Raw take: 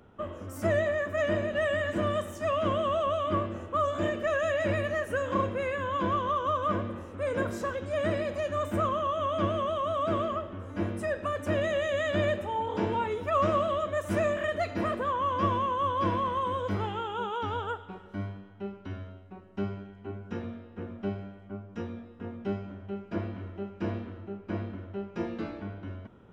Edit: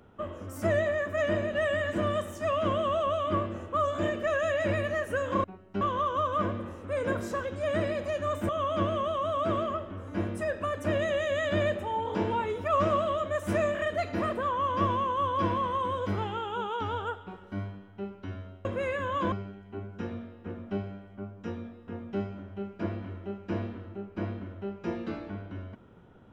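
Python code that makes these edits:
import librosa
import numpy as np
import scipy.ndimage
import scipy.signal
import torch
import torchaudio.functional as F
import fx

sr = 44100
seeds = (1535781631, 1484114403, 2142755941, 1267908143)

y = fx.edit(x, sr, fx.swap(start_s=5.44, length_s=0.67, other_s=19.27, other_length_s=0.37),
    fx.cut(start_s=8.79, length_s=0.32), tone=tone)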